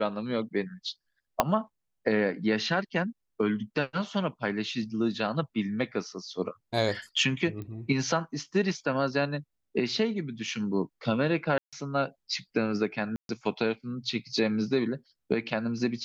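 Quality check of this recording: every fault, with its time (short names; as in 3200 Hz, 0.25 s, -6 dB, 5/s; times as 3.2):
1.4 pop -7 dBFS
7.62 pop -27 dBFS
11.58–11.73 gap 0.146 s
13.16–13.29 gap 0.132 s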